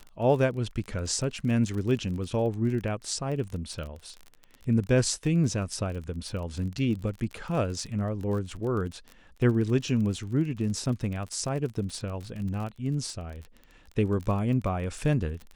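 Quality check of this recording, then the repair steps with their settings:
surface crackle 31 per second −34 dBFS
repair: click removal

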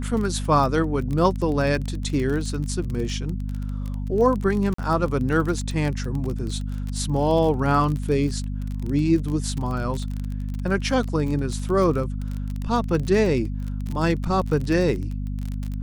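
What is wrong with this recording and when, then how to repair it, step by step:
surface crackle 31 per second −27 dBFS
mains hum 50 Hz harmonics 5 −28 dBFS
0:04.74–0:04.78: drop-out 44 ms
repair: click removal
hum removal 50 Hz, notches 5
repair the gap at 0:04.74, 44 ms

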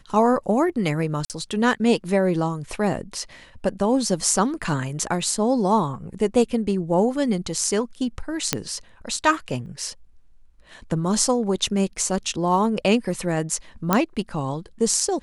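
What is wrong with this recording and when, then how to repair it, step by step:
0:01.25–0:01.30: drop-out 48 ms
0:08.53: click −2 dBFS
0:09.66: drop-out 2 ms
0:13.93: click −3 dBFS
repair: click removal
repair the gap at 0:01.25, 48 ms
repair the gap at 0:09.66, 2 ms

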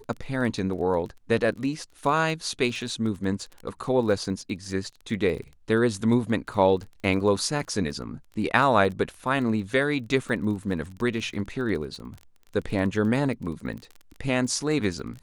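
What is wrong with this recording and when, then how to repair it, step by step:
surface crackle 26 per second −34 dBFS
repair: click removal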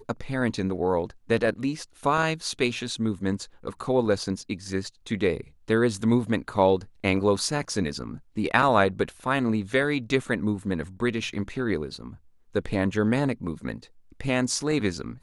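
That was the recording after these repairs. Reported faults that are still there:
none of them is left

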